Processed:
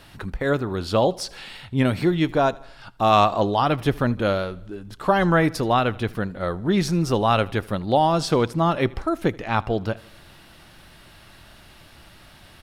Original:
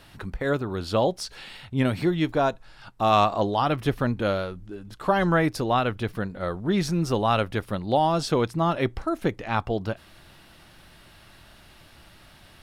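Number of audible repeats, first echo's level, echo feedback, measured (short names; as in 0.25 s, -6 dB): 3, -23.0 dB, 54%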